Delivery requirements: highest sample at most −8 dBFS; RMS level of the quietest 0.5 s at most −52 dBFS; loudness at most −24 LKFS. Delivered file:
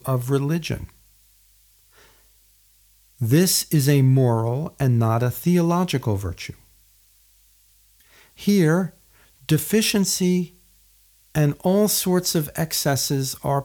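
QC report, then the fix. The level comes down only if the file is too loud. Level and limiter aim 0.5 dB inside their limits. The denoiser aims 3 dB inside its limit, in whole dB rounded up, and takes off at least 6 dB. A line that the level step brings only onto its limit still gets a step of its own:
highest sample −6.5 dBFS: out of spec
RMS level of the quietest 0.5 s −57 dBFS: in spec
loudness −21.0 LKFS: out of spec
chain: level −3.5 dB

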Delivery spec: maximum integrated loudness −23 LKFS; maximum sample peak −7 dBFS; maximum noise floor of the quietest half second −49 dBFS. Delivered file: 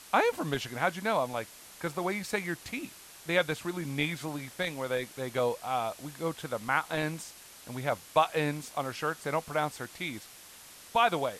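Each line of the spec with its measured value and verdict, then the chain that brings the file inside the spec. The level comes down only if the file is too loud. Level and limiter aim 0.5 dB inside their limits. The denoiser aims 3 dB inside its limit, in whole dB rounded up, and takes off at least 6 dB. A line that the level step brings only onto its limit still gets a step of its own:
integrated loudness −32.0 LKFS: in spec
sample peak −10.5 dBFS: in spec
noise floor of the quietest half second −51 dBFS: in spec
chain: no processing needed

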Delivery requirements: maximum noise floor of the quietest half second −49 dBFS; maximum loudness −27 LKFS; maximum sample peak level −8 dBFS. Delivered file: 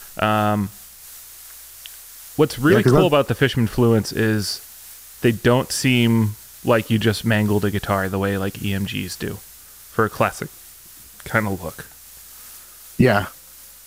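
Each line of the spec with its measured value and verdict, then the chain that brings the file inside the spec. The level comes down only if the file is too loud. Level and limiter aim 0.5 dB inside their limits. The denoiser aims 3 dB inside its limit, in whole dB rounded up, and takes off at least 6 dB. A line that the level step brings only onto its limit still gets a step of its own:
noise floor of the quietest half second −44 dBFS: out of spec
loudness −20.0 LKFS: out of spec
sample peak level −3.5 dBFS: out of spec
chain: level −7.5 dB

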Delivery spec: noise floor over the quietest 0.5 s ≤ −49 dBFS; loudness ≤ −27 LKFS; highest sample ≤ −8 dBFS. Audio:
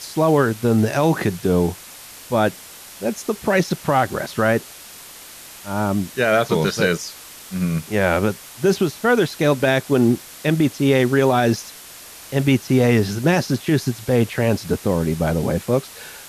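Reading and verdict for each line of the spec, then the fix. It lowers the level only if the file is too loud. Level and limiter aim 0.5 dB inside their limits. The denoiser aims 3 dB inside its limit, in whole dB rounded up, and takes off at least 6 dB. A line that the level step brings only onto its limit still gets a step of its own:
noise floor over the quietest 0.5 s −40 dBFS: out of spec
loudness −19.5 LKFS: out of spec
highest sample −4.0 dBFS: out of spec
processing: broadband denoise 6 dB, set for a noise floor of −40 dBFS
level −8 dB

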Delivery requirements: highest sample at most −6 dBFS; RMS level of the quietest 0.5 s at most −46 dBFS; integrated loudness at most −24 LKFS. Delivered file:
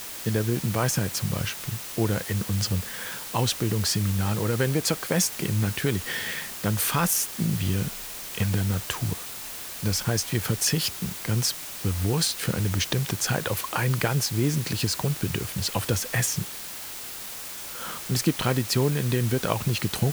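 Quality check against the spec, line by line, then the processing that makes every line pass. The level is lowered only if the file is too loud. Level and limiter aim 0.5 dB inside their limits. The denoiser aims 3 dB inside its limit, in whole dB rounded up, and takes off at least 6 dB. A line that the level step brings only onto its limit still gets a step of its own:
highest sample −8.0 dBFS: in spec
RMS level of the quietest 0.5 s −37 dBFS: out of spec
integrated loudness −26.0 LKFS: in spec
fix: broadband denoise 12 dB, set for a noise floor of −37 dBFS

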